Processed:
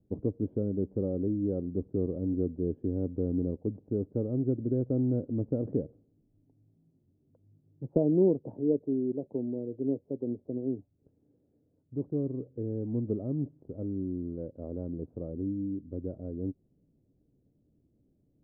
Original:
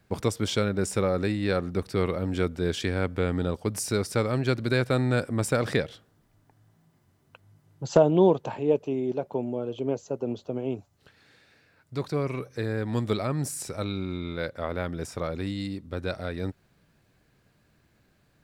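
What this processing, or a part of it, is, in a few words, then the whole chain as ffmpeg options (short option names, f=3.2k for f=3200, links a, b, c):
under water: -af "lowpass=f=500:w=0.5412,lowpass=f=500:w=1.3066,equalizer=f=280:t=o:w=0.43:g=7.5,volume=-5dB"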